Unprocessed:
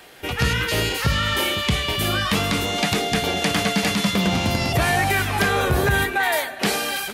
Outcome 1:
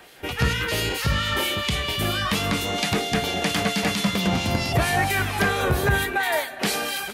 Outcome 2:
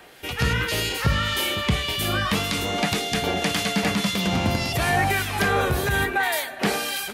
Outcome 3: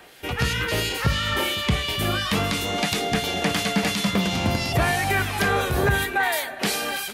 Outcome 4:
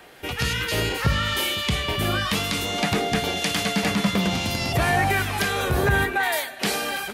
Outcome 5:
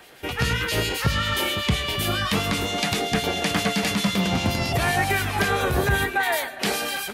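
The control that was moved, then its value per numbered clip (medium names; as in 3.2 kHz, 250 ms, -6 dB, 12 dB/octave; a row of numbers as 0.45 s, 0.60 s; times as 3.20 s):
harmonic tremolo, rate: 4.4 Hz, 1.8 Hz, 2.9 Hz, 1 Hz, 7.6 Hz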